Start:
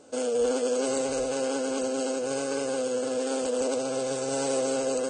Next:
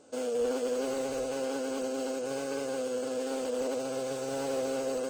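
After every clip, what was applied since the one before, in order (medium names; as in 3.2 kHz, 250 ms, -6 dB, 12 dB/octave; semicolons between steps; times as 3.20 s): slew-rate limiter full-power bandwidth 68 Hz; trim -4.5 dB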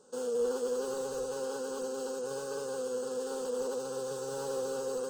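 static phaser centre 440 Hz, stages 8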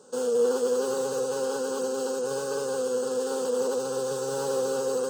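high-pass 86 Hz 24 dB/octave; trim +7.5 dB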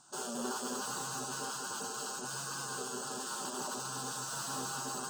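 spectral gate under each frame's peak -15 dB weak; trim -1 dB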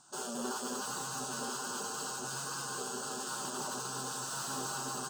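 delay 1039 ms -7.5 dB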